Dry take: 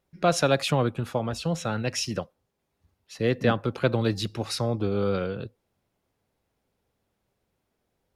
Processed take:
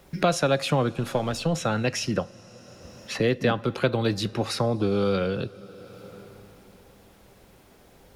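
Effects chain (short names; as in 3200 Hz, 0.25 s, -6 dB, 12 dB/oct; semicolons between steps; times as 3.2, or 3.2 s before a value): 0.92–1.54 half-wave gain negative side -3 dB; two-slope reverb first 0.22 s, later 2.9 s, from -18 dB, DRR 15.5 dB; three-band squash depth 70%; gain +1.5 dB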